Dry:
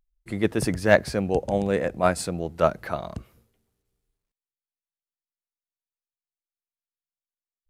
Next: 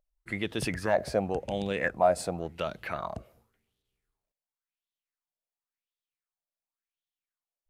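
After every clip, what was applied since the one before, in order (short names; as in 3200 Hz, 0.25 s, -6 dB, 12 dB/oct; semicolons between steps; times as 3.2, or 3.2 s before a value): limiter -14 dBFS, peak gain reduction 11 dB; LFO bell 0.92 Hz 590–3500 Hz +16 dB; gain -6.5 dB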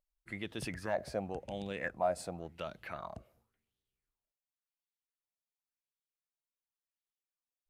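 bell 440 Hz -2.5 dB 0.34 oct; gain -8.5 dB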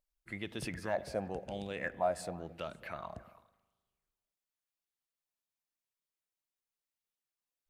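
delay with a stepping band-pass 0.108 s, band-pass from 180 Hz, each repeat 1.4 oct, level -11 dB; spring tank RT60 1.3 s, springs 39 ms, chirp 55 ms, DRR 18.5 dB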